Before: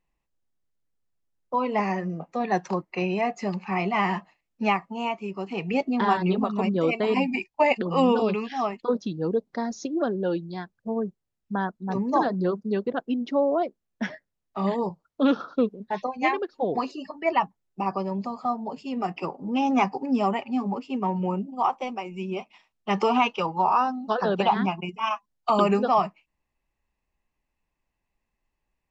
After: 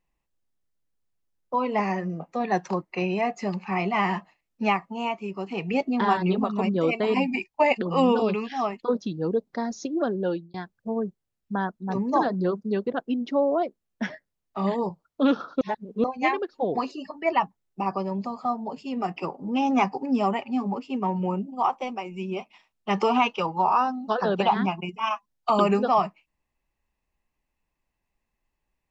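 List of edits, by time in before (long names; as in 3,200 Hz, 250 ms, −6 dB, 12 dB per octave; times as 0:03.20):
0:10.29–0:10.54: fade out
0:15.61–0:16.04: reverse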